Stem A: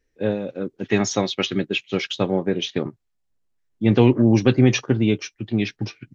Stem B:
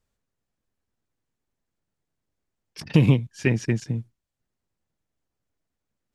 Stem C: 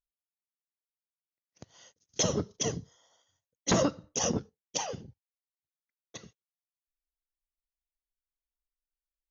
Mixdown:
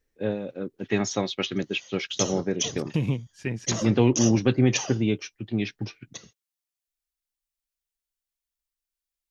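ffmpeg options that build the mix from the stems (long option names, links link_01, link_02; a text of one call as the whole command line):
ffmpeg -i stem1.wav -i stem2.wav -i stem3.wav -filter_complex "[0:a]volume=-5dB[link_01];[1:a]volume=-8.5dB[link_02];[2:a]acompressor=threshold=-29dB:ratio=5,highshelf=frequency=2000:gain=8.5,volume=-1.5dB[link_03];[link_01][link_02][link_03]amix=inputs=3:normalize=0" out.wav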